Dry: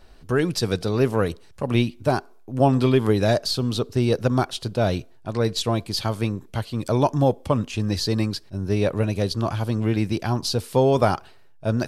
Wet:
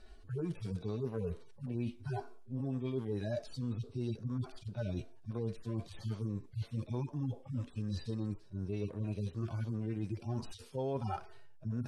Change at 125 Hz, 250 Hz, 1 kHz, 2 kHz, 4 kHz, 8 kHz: -13.5 dB, -15.5 dB, -21.5 dB, -23.0 dB, -26.0 dB, under -25 dB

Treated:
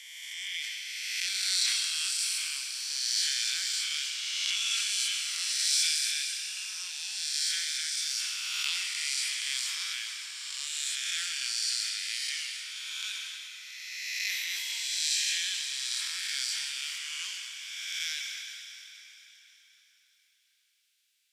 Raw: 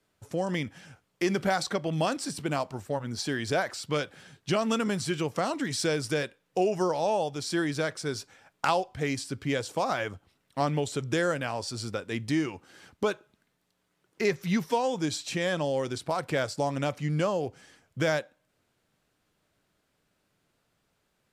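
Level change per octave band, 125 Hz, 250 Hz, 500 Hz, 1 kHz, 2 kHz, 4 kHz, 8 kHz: under -40 dB, under -40 dB, under -40 dB, -22.0 dB, 0.0 dB, +10.0 dB, +10.5 dB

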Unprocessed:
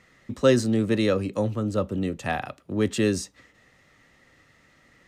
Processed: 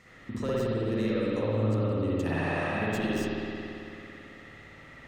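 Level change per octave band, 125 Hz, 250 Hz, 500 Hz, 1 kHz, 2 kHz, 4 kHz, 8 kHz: -1.5, -4.5, -5.0, -2.5, -1.0, -7.0, -13.0 dB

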